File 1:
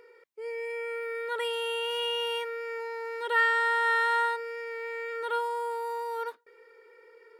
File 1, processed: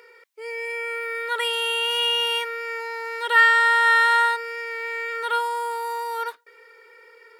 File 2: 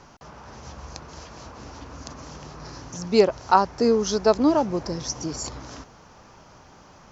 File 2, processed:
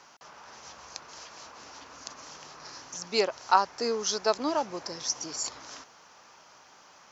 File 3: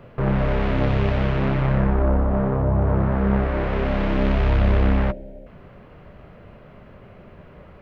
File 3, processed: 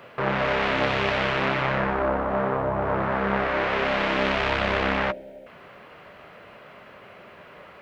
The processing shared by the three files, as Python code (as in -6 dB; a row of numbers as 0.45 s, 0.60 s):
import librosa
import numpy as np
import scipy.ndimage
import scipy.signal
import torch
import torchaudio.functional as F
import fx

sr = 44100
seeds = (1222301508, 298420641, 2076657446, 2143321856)

y = fx.highpass(x, sr, hz=1400.0, slope=6)
y = librosa.util.normalize(y) * 10.0 ** (-6 / 20.0)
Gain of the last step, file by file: +11.5 dB, +0.5 dB, +9.0 dB